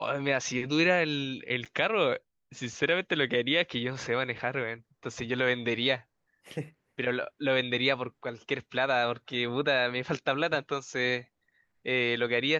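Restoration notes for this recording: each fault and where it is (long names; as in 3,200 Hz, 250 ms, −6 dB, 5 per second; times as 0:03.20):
0:01.65–0:01.66: drop-out 7 ms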